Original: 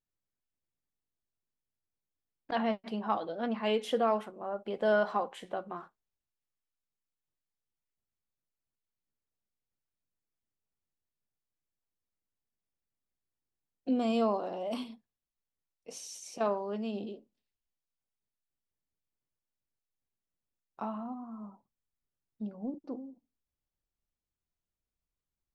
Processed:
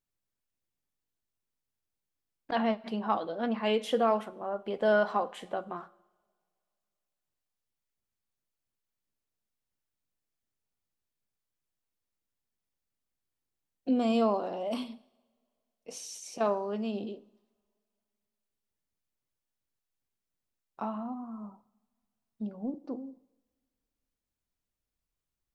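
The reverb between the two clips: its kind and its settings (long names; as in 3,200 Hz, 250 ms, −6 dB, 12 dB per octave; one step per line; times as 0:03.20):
coupled-rooms reverb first 0.93 s, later 2.8 s, from −22 dB, DRR 19 dB
level +2 dB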